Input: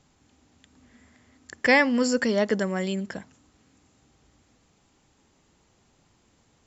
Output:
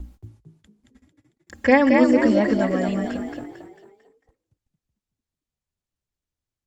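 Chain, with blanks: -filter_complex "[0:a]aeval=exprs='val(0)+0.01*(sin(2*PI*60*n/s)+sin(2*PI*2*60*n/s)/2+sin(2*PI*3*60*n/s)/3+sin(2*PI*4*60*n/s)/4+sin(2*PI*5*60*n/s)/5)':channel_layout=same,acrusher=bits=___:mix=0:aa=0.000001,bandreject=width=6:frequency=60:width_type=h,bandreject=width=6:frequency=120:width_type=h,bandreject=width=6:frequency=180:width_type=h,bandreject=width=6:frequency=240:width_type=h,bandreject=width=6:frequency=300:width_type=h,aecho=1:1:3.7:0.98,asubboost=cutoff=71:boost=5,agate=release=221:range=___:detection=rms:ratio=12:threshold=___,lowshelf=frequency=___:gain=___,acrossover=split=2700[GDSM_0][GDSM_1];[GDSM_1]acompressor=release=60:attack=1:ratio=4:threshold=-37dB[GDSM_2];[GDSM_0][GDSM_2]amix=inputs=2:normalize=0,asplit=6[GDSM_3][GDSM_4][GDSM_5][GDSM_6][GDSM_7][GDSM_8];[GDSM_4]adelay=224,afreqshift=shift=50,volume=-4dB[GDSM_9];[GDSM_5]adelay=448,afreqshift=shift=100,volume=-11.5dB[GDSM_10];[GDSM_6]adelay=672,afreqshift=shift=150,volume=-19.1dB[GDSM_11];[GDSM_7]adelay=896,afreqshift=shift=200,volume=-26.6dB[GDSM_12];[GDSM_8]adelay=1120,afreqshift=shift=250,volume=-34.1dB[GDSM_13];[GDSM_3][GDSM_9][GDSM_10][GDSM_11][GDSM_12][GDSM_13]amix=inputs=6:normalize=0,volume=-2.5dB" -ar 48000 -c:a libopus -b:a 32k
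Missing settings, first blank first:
10, -42dB, -48dB, 280, 11.5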